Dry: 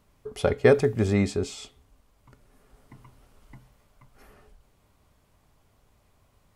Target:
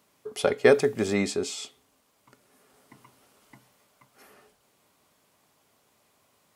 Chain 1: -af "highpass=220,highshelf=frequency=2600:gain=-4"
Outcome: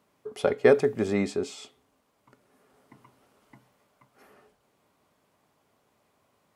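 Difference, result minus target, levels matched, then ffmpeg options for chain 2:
4,000 Hz band −6.5 dB
-af "highpass=220,highshelf=frequency=2600:gain=6"

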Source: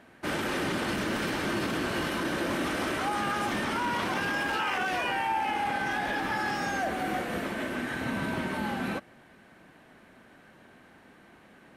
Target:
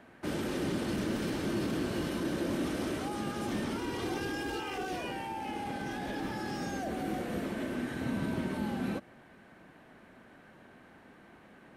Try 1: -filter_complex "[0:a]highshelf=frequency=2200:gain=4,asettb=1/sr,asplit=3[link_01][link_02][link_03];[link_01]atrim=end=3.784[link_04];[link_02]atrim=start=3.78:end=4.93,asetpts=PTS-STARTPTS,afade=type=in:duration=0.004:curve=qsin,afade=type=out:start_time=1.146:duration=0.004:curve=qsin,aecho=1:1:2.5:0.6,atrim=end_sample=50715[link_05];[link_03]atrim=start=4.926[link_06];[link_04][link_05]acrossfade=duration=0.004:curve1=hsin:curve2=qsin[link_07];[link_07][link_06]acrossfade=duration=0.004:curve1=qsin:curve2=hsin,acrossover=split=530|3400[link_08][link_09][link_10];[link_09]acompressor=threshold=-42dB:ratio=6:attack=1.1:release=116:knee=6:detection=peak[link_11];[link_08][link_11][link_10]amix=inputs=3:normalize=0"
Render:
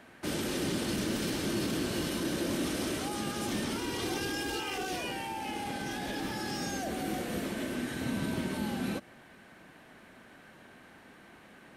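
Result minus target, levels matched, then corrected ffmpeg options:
4,000 Hz band +5.0 dB
-filter_complex "[0:a]highshelf=frequency=2200:gain=-5,asettb=1/sr,asplit=3[link_01][link_02][link_03];[link_01]atrim=end=3.784[link_04];[link_02]atrim=start=3.78:end=4.93,asetpts=PTS-STARTPTS,afade=type=in:duration=0.004:curve=qsin,afade=type=out:start_time=1.146:duration=0.004:curve=qsin,aecho=1:1:2.5:0.6,atrim=end_sample=50715[link_05];[link_03]atrim=start=4.926[link_06];[link_04][link_05]acrossfade=duration=0.004:curve1=hsin:curve2=qsin[link_07];[link_07][link_06]acrossfade=duration=0.004:curve1=qsin:curve2=hsin,acrossover=split=530|3400[link_08][link_09][link_10];[link_09]acompressor=threshold=-42dB:ratio=6:attack=1.1:release=116:knee=6:detection=peak[link_11];[link_08][link_11][link_10]amix=inputs=3:normalize=0"

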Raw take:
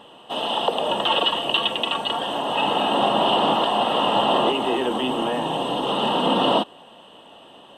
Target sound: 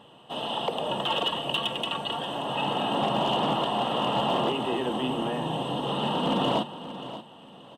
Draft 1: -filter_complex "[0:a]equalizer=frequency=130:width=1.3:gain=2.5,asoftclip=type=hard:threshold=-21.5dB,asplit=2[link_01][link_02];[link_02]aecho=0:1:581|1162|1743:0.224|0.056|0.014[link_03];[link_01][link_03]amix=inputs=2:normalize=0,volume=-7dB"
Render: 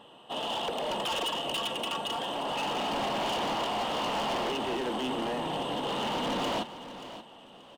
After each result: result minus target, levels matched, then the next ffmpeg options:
hard clipping: distortion +16 dB; 125 Hz band −5.5 dB
-filter_complex "[0:a]equalizer=frequency=130:width=1.3:gain=2.5,asoftclip=type=hard:threshold=-11.5dB,asplit=2[link_01][link_02];[link_02]aecho=0:1:581|1162|1743:0.224|0.056|0.014[link_03];[link_01][link_03]amix=inputs=2:normalize=0,volume=-7dB"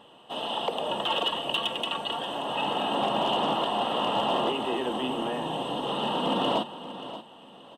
125 Hz band −6.5 dB
-filter_complex "[0:a]equalizer=frequency=130:width=1.3:gain=11.5,asoftclip=type=hard:threshold=-11.5dB,asplit=2[link_01][link_02];[link_02]aecho=0:1:581|1162|1743:0.224|0.056|0.014[link_03];[link_01][link_03]amix=inputs=2:normalize=0,volume=-7dB"

